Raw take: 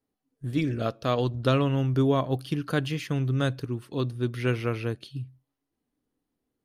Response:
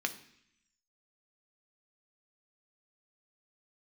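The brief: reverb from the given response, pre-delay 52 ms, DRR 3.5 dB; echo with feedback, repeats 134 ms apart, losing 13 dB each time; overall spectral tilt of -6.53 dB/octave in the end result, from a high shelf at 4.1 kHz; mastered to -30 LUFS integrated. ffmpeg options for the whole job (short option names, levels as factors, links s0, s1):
-filter_complex "[0:a]highshelf=f=4100:g=-4.5,aecho=1:1:134|268|402:0.224|0.0493|0.0108,asplit=2[s0][s1];[1:a]atrim=start_sample=2205,adelay=52[s2];[s1][s2]afir=irnorm=-1:irlink=0,volume=0.398[s3];[s0][s3]amix=inputs=2:normalize=0,volume=0.668"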